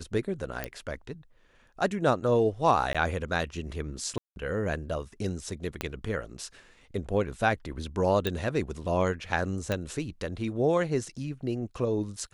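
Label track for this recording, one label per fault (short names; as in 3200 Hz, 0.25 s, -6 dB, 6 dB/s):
0.640000	0.640000	pop -16 dBFS
2.930000	2.950000	gap 16 ms
4.180000	4.360000	gap 0.181 s
5.810000	5.810000	pop -14 dBFS
8.270000	8.270000	pop -14 dBFS
9.720000	9.720000	pop -16 dBFS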